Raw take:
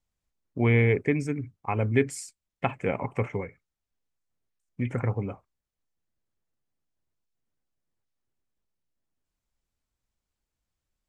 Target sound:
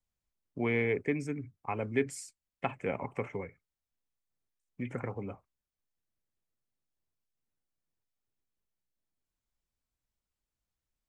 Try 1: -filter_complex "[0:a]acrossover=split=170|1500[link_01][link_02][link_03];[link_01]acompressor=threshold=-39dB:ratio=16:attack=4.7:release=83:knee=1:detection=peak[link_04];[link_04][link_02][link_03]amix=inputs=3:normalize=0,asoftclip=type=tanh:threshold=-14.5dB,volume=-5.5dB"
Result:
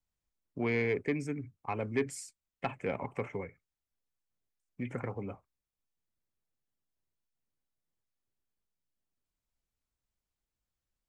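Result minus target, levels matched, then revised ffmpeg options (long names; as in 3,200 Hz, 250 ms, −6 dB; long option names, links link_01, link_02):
soft clipping: distortion +20 dB
-filter_complex "[0:a]acrossover=split=170|1500[link_01][link_02][link_03];[link_01]acompressor=threshold=-39dB:ratio=16:attack=4.7:release=83:knee=1:detection=peak[link_04];[link_04][link_02][link_03]amix=inputs=3:normalize=0,asoftclip=type=tanh:threshold=-3dB,volume=-5.5dB"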